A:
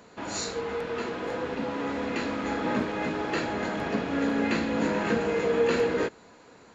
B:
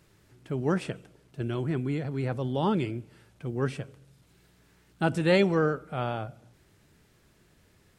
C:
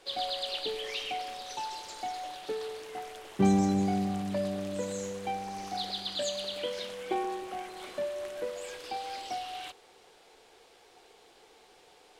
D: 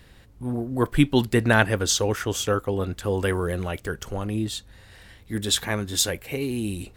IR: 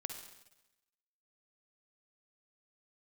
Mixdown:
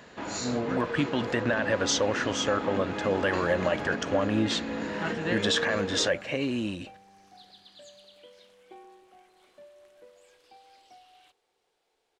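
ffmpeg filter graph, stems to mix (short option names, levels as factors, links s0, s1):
-filter_complex "[0:a]volume=1[s0];[1:a]volume=0.355[s1];[2:a]adelay=1600,volume=0.126[s2];[3:a]equalizer=f=580:t=o:w=0.47:g=14.5,dynaudnorm=f=480:g=7:m=3.76,volume=0.596,asplit=2[s3][s4];[s4]apad=whole_len=352267[s5];[s1][s5]sidechaincompress=threshold=0.0398:ratio=8:attack=16:release=453[s6];[s0][s2]amix=inputs=2:normalize=0,acompressor=threshold=0.0316:ratio=6,volume=1[s7];[s6][s3]amix=inputs=2:normalize=0,highpass=130,equalizer=f=260:t=q:w=4:g=3,equalizer=f=430:t=q:w=4:g=-7,equalizer=f=1100:t=q:w=4:g=6,equalizer=f=1700:t=q:w=4:g=10,equalizer=f=2900:t=q:w=4:g=6,equalizer=f=5800:t=q:w=4:g=4,lowpass=f=6400:w=0.5412,lowpass=f=6400:w=1.3066,alimiter=limit=0.158:level=0:latency=1,volume=1[s8];[s7][s8]amix=inputs=2:normalize=0"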